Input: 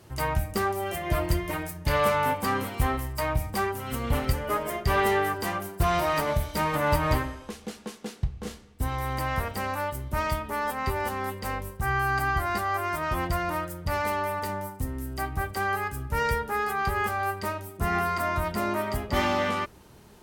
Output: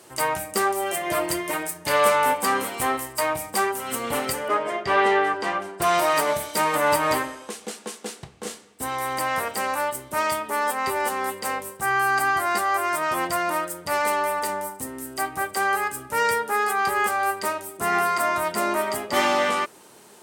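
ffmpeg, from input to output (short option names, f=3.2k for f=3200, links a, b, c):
-filter_complex "[0:a]asettb=1/sr,asplit=3[a][b][c];[a]atrim=end=4.484[d];[b]atrim=start=4.48:end=5.82,asetpts=PTS-STARTPTS,afade=t=in:d=0.004:c=qsin,afade=t=out:st=1.336:d=0.004:c=qsin,lowpass=3.7k[e];[c]atrim=start=5.816[f];[d][e]acrossfade=d=0.004:c1=hsin:c2=qsin[g];[g][f]acrossfade=d=0.004:c1=qsin:c2=hsin,highpass=320,equalizer=f=8.5k:t=o:w=0.64:g=8.5,acontrast=32"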